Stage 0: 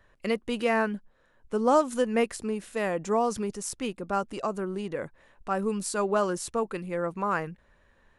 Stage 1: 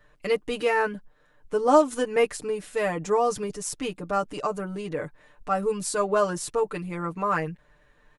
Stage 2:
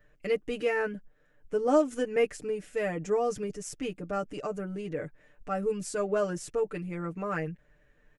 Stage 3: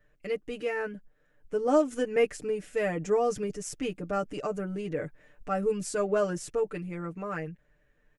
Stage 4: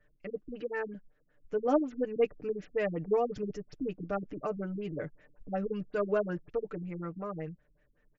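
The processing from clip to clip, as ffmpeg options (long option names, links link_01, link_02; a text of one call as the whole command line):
ffmpeg -i in.wav -af "aecho=1:1:6.7:0.91" out.wav
ffmpeg -i in.wav -af "equalizer=frequency=1000:width_type=o:width=0.67:gain=-12,equalizer=frequency=4000:width_type=o:width=0.67:gain=-9,equalizer=frequency=10000:width_type=o:width=0.67:gain=-9,volume=-2.5dB" out.wav
ffmpeg -i in.wav -af "dynaudnorm=framelen=250:gausssize=13:maxgain=5.5dB,volume=-3.5dB" out.wav
ffmpeg -i in.wav -af "afftfilt=real='re*lt(b*sr/1024,310*pow(7600/310,0.5+0.5*sin(2*PI*5.4*pts/sr)))':imag='im*lt(b*sr/1024,310*pow(7600/310,0.5+0.5*sin(2*PI*5.4*pts/sr)))':win_size=1024:overlap=0.75,volume=-2dB" out.wav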